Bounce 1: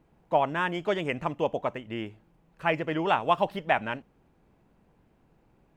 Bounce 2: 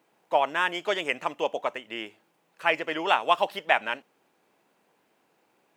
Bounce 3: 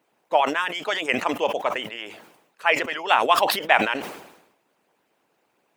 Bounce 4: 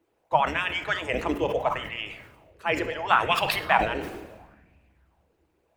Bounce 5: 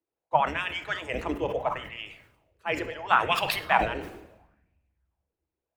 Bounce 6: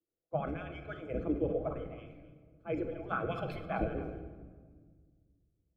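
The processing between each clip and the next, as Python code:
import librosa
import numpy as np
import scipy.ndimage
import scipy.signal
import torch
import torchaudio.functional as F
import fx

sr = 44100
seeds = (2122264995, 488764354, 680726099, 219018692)

y1 = scipy.signal.sosfilt(scipy.signal.butter(2, 380.0, 'highpass', fs=sr, output='sos'), x)
y1 = fx.high_shelf(y1, sr, hz=2000.0, db=9.5)
y2 = fx.hpss(y1, sr, part='harmonic', gain_db=-16)
y2 = fx.sustainer(y2, sr, db_per_s=67.0)
y2 = y2 * 10.0 ** (4.0 / 20.0)
y3 = fx.octave_divider(y2, sr, octaves=2, level_db=2.0)
y3 = fx.room_shoebox(y3, sr, seeds[0], volume_m3=1500.0, walls='mixed', distance_m=0.67)
y3 = fx.bell_lfo(y3, sr, hz=0.73, low_hz=340.0, high_hz=2600.0, db=12)
y3 = y3 * 10.0 ** (-8.0 / 20.0)
y4 = fx.band_widen(y3, sr, depth_pct=40)
y4 = y4 * 10.0 ** (-3.0 / 20.0)
y5 = scipy.signal.lfilter(np.full(47, 1.0 / 47), 1.0, y4)
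y5 = y5 + 10.0 ** (-15.5 / 20.0) * np.pad(y5, (int(261 * sr / 1000.0), 0))[:len(y5)]
y5 = fx.room_shoebox(y5, sr, seeds[1], volume_m3=2200.0, walls='mixed', distance_m=0.66)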